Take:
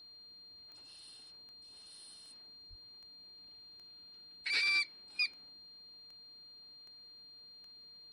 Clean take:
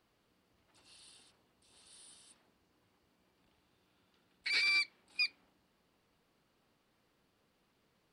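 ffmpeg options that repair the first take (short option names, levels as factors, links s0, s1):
-filter_complex "[0:a]adeclick=t=4,bandreject=f=4200:w=30,asplit=3[s0][s1][s2];[s0]afade=t=out:st=2.69:d=0.02[s3];[s1]highpass=f=140:w=0.5412,highpass=f=140:w=1.3066,afade=t=in:st=2.69:d=0.02,afade=t=out:st=2.81:d=0.02[s4];[s2]afade=t=in:st=2.81:d=0.02[s5];[s3][s4][s5]amix=inputs=3:normalize=0"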